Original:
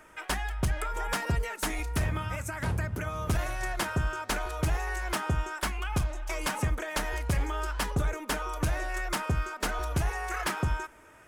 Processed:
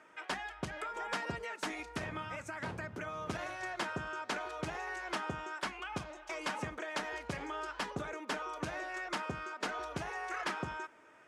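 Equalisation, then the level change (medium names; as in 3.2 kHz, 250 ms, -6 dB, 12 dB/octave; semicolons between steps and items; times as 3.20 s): high-pass 200 Hz 12 dB/octave; low-pass 5.5 kHz 12 dB/octave; -5.0 dB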